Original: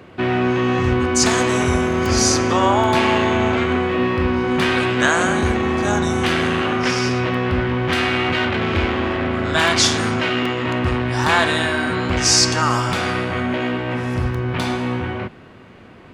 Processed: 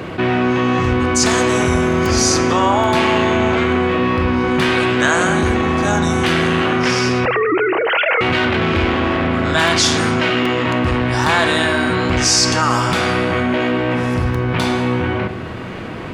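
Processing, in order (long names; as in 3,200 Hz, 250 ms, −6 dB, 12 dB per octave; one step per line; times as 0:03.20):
0:07.25–0:08.21: three sine waves on the formant tracks
rectangular room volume 3,500 cubic metres, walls furnished, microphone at 0.62 metres
envelope flattener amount 50%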